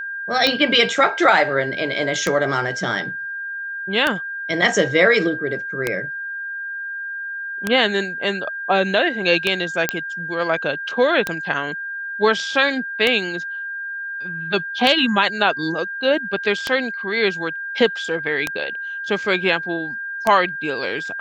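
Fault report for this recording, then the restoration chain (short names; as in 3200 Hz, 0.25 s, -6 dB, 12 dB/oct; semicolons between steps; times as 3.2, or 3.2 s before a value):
tick 33 1/3 rpm -4 dBFS
tone 1600 Hz -26 dBFS
9.89 pop -1 dBFS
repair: de-click; notch 1600 Hz, Q 30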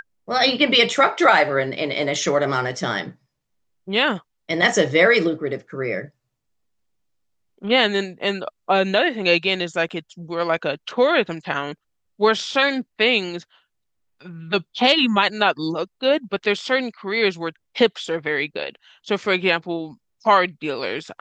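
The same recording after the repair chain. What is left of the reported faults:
none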